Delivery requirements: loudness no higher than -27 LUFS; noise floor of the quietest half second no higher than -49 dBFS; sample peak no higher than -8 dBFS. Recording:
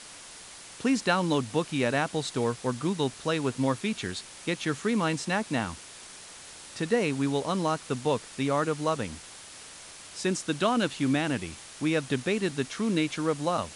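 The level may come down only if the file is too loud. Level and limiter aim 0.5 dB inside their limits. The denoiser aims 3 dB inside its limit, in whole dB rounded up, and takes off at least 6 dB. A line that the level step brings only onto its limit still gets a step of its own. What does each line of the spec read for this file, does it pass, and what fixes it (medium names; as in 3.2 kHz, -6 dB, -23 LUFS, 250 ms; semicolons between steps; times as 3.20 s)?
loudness -28.5 LUFS: pass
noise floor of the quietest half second -46 dBFS: fail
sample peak -10.0 dBFS: pass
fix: noise reduction 6 dB, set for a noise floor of -46 dBFS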